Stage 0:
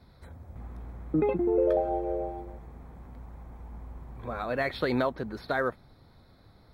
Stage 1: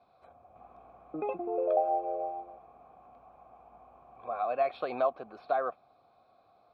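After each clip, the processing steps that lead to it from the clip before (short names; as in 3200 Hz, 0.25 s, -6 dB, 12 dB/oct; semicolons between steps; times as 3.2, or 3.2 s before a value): vowel filter a; gain +8 dB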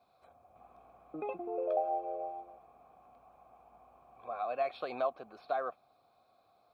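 high shelf 3900 Hz +11 dB; gain -5 dB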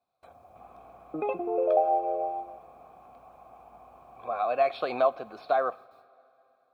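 gate with hold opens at -57 dBFS; two-slope reverb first 0.55 s, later 3.6 s, from -16 dB, DRR 17 dB; gain +8.5 dB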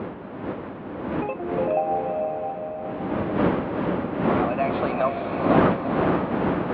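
wind noise 480 Hz -27 dBFS; speaker cabinet 130–3200 Hz, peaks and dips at 130 Hz -6 dB, 420 Hz -5 dB, 710 Hz -4 dB; diffused feedback echo 0.452 s, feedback 50%, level -4 dB; gain +2.5 dB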